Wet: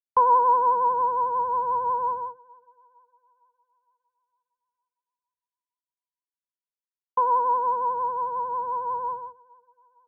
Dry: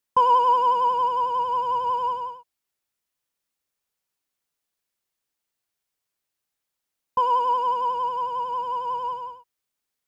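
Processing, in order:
elliptic low-pass filter 1,600 Hz
spectral peaks only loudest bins 64
downward expander −31 dBFS
feedback echo with a high-pass in the loop 458 ms, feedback 54%, high-pass 580 Hz, level −23 dB

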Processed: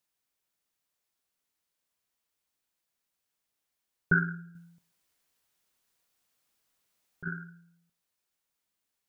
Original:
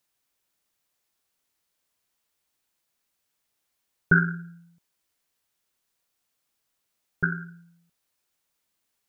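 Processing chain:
0:04.55–0:07.28: compressor whose output falls as the input rises −28 dBFS, ratio −0.5
on a send: convolution reverb RT60 0.60 s, pre-delay 3 ms, DRR 14 dB
on the sum: level −6 dB

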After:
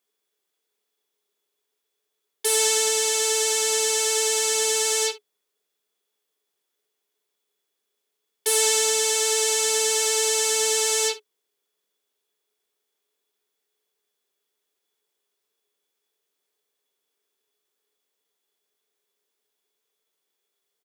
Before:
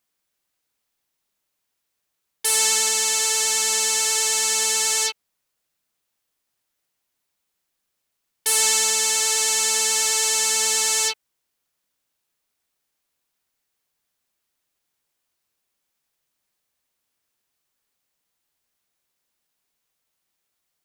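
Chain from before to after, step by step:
high-pass filter 240 Hz 12 dB per octave
hollow resonant body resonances 420/3,400 Hz, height 18 dB, ringing for 80 ms
on a send: ambience of single reflections 24 ms −11 dB, 61 ms −16.5 dB
on the sum: level −3 dB

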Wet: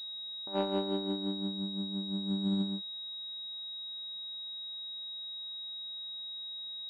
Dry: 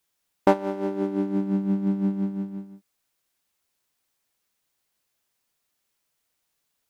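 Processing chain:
parametric band 360 Hz −2.5 dB 0.5 octaves
compressor whose output falls as the input rises −36 dBFS, ratio −1
switching amplifier with a slow clock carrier 3,800 Hz

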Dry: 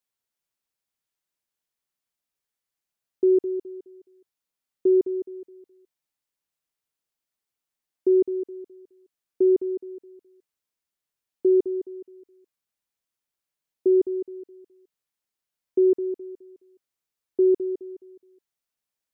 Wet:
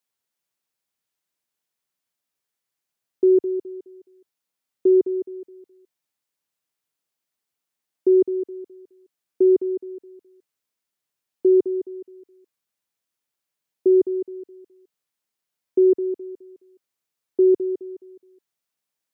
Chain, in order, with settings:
high-pass filter 93 Hz
level +3 dB

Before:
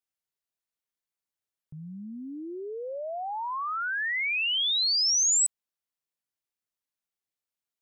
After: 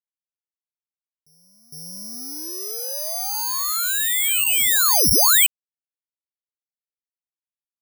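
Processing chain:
dead-zone distortion −46.5 dBFS
backwards echo 459 ms −20 dB
bad sample-rate conversion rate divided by 8×, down none, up zero stuff

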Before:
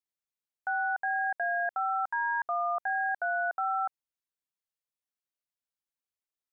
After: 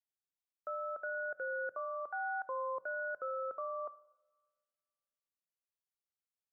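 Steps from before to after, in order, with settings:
coupled-rooms reverb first 0.85 s, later 2.4 s, from −23 dB, DRR 15 dB
frequency shifter −170 Hz
level −8.5 dB

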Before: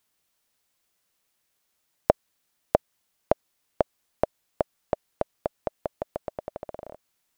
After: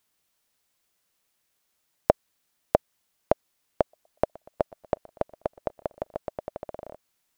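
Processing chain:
0:03.81–0:06.18: feedback echo with a swinging delay time 121 ms, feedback 60%, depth 73 cents, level −23 dB

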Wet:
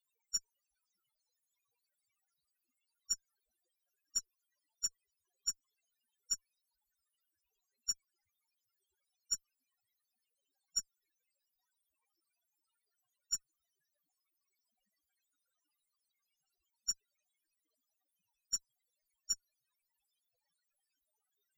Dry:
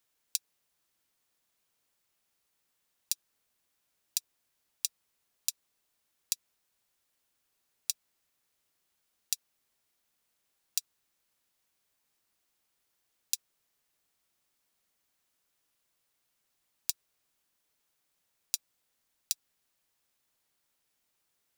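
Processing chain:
spectral peaks only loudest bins 4
harmonic generator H 8 −27 dB, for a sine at −34 dBFS
level +12 dB

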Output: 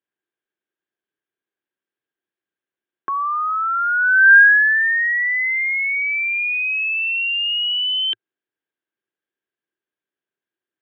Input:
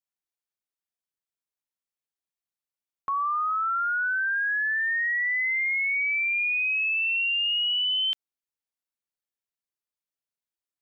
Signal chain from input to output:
Chebyshev band-pass filter 110–3,400 Hz, order 4
hollow resonant body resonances 360/1,600 Hz, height 14 dB, ringing for 25 ms
level +4.5 dB

